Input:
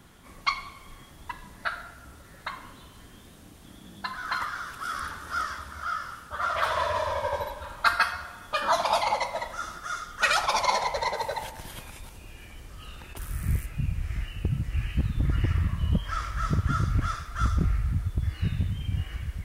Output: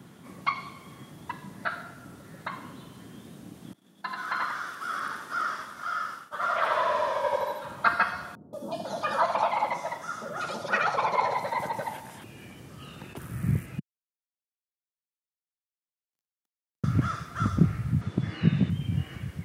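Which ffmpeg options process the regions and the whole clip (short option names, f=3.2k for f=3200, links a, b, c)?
-filter_complex "[0:a]asettb=1/sr,asplit=3[a][b][c];[a]atrim=end=3.734[d];[b]atrim=start=3.73:end=7.65,asetpts=PTS-STARTPTS,afade=t=in:d=0.004:c=qsin,afade=t=out:st=3.916:d=0.004:c=qsin,agate=range=-33dB:threshold=-39dB:ratio=3:release=100:detection=peak,highpass=f=540:p=1,aecho=1:1:85:0.708,atrim=end_sample=172872[e];[c]atrim=start=7.646[f];[d][e]acrossfade=d=0.004:c1=hsin:c2=qsin[g];[g][f]acrossfade=d=0.004:c1=qsin:c2=hsin,asettb=1/sr,asplit=3[h][i][j];[h]atrim=end=8.354[k];[i]atrim=start=8.35:end=12.24,asetpts=PTS-STARTPTS,afade=t=in:d=0.004:c=qsin,afade=t=out:st=3.886:d=0.004:c=qsin,highpass=f=140:p=1,acrossover=split=570|3500[l][m][n];[n]adelay=180[o];[m]adelay=500[p];[l][p][o]amix=inputs=3:normalize=0,atrim=end_sample=171549[q];[j]atrim=start=12.236[r];[k][q]acrossfade=d=0.004:c1=hsin:c2=qsin[s];[s][r]acrossfade=d=0.004:c1=qsin:c2=hsin,asettb=1/sr,asplit=3[t][u][v];[t]atrim=end=13.794[w];[u]atrim=start=13.79:end=16.84,asetpts=PTS-STARTPTS,afade=t=in:d=0.004:c=qsin,afade=t=out:st=3.046:d=0.004:c=qsin,bandpass=f=6.1k:t=q:w=11,aeval=exprs='sgn(val(0))*max(abs(val(0))-0.00473,0)':c=same[x];[v]atrim=start=16.836[y];[w][x]acrossfade=d=0.004:c1=hsin:c2=qsin[z];[z][y]acrossfade=d=0.004:c1=qsin:c2=hsin,asettb=1/sr,asplit=3[aa][ab][ac];[aa]atrim=end=18.014[ad];[ab]atrim=start=18.01:end=18.7,asetpts=PTS-STARTPTS,afade=t=in:d=0.004:c=qsin,afade=t=out:st=0.686:d=0.004:c=qsin,highpass=180,lowpass=5.5k,acontrast=48[ae];[ac]atrim=start=18.696[af];[ad][ae]acrossfade=d=0.004:c1=hsin:c2=qsin[ag];[ag][af]acrossfade=d=0.004:c1=qsin:c2=hsin,acrossover=split=2800[ah][ai];[ai]acompressor=threshold=-45dB:ratio=4:attack=1:release=60[aj];[ah][aj]amix=inputs=2:normalize=0,highpass=f=130:w=0.5412,highpass=f=130:w=1.3066,lowshelf=f=460:g=12,volume=-1.5dB"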